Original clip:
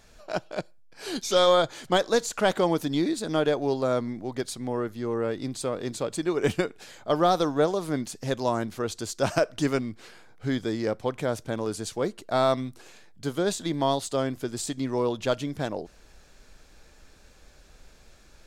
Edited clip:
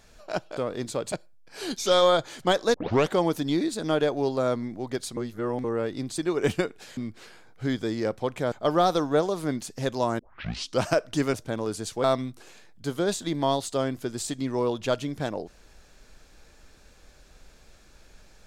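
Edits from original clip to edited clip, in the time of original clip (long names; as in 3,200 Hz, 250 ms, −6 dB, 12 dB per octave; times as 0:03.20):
0:02.19: tape start 0.36 s
0:04.62–0:05.09: reverse
0:05.63–0:06.18: move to 0:00.57
0:08.64: tape start 0.63 s
0:09.79–0:11.34: move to 0:06.97
0:12.04–0:12.43: remove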